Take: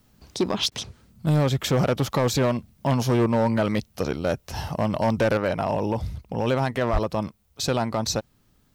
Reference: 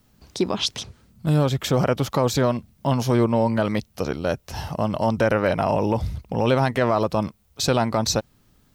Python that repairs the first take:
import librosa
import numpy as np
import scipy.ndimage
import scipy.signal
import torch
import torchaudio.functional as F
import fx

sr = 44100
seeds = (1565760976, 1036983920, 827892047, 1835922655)

y = fx.fix_declip(x, sr, threshold_db=-16.0)
y = fx.fix_deplosive(y, sr, at_s=(6.92,))
y = fx.fix_interpolate(y, sr, at_s=(0.7,), length_ms=14.0)
y = fx.gain(y, sr, db=fx.steps((0.0, 0.0), (5.37, 3.5)))